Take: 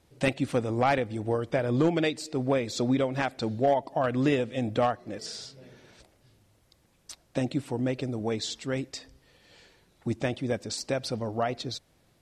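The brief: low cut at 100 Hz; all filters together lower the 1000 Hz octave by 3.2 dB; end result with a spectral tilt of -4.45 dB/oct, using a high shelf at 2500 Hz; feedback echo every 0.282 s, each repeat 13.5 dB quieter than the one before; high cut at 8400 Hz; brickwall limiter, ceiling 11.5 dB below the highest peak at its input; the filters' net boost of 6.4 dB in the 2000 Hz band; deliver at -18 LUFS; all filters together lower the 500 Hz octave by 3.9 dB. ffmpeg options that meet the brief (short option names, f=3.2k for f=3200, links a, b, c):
-af "highpass=100,lowpass=8.4k,equalizer=f=500:t=o:g=-4,equalizer=f=1k:t=o:g=-5,equalizer=f=2k:t=o:g=7.5,highshelf=f=2.5k:g=4,alimiter=limit=-19.5dB:level=0:latency=1,aecho=1:1:282|564:0.211|0.0444,volume=14dB"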